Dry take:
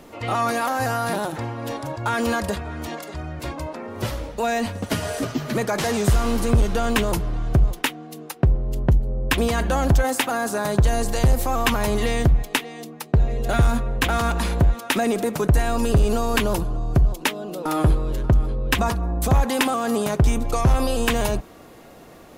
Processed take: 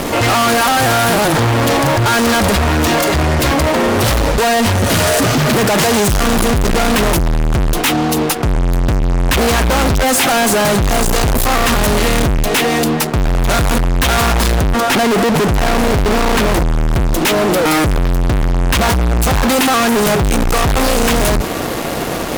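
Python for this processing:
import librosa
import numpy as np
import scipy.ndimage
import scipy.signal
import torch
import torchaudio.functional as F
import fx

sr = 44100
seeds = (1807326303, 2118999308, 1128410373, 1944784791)

y = fx.high_shelf(x, sr, hz=3300.0, db=-10.5, at=(14.62, 16.72))
y = fx.fuzz(y, sr, gain_db=43.0, gate_db=-49.0)
y = y * librosa.db_to_amplitude(1.5)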